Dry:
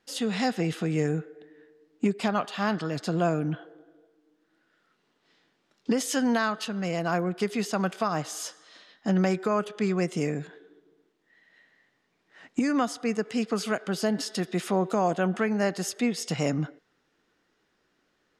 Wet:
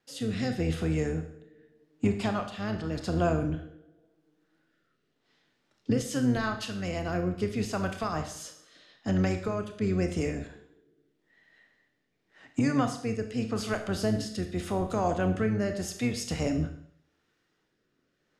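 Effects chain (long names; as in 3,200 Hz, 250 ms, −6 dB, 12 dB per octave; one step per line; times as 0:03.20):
sub-octave generator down 1 octave, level −4 dB
rotating-speaker cabinet horn 0.85 Hz
four-comb reverb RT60 0.6 s, combs from 25 ms, DRR 6.5 dB
level −2 dB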